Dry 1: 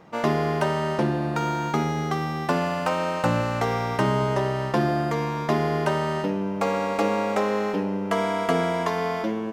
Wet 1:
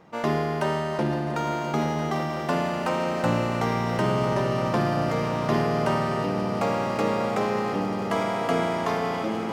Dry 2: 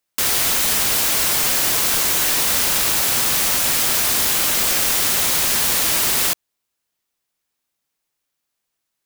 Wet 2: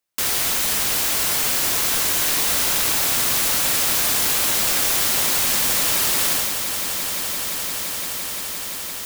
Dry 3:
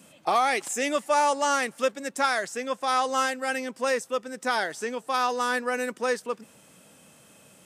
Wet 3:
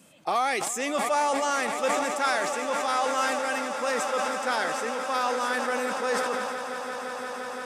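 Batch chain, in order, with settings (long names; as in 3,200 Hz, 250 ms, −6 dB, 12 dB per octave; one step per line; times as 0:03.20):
echo that builds up and dies away 172 ms, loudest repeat 8, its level −15 dB
level that may fall only so fast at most 23 dB per second
level −3 dB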